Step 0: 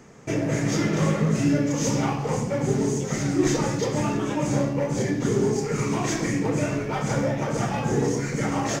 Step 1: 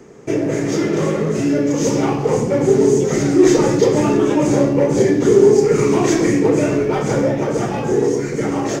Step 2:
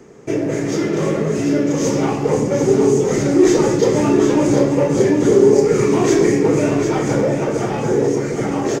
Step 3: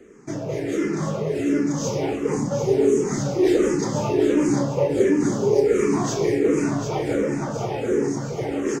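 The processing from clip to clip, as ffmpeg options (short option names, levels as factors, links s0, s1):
-filter_complex "[0:a]equalizer=f=380:t=o:w=0.88:g=11.5,acrossover=split=380|1400[s0][s1][s2];[s0]alimiter=limit=0.141:level=0:latency=1[s3];[s3][s1][s2]amix=inputs=3:normalize=0,dynaudnorm=f=200:g=21:m=2,volume=1.19"
-af "aecho=1:1:747:0.447,volume=0.891"
-filter_complex "[0:a]asplit=2[s0][s1];[s1]afreqshift=-1.4[s2];[s0][s2]amix=inputs=2:normalize=1,volume=0.708"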